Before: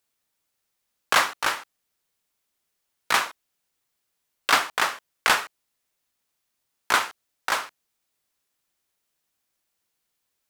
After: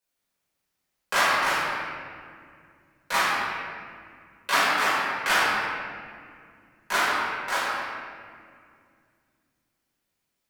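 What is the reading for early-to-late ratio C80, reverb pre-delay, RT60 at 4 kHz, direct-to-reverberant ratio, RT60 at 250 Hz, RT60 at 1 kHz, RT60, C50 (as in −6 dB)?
−1.0 dB, 4 ms, 1.3 s, −11.5 dB, 3.5 s, 2.0 s, 2.2 s, −3.5 dB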